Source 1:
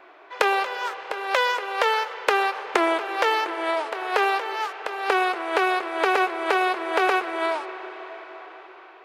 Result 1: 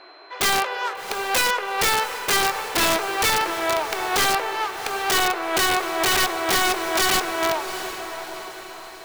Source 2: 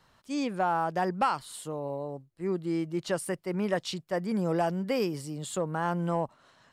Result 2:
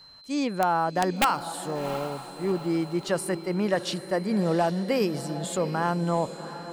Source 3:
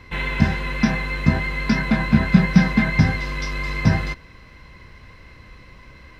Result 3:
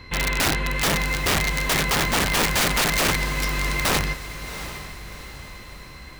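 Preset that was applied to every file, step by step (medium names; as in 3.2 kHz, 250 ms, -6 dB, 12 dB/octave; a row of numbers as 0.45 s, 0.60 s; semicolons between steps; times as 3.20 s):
whistle 4.1 kHz -52 dBFS; integer overflow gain 16.5 dB; echo that smears into a reverb 731 ms, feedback 46%, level -12 dB; peak normalisation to -12 dBFS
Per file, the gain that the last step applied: +2.0 dB, +3.5 dB, +1.5 dB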